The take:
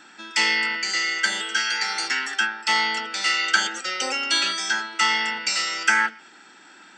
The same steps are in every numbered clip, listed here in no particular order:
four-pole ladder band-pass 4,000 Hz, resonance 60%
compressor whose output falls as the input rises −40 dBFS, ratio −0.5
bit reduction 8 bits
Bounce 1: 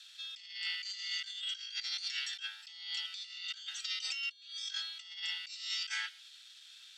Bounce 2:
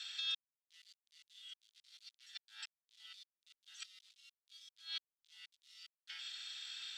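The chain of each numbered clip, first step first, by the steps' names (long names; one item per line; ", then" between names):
bit reduction, then four-pole ladder band-pass, then compressor whose output falls as the input rises
compressor whose output falls as the input rises, then bit reduction, then four-pole ladder band-pass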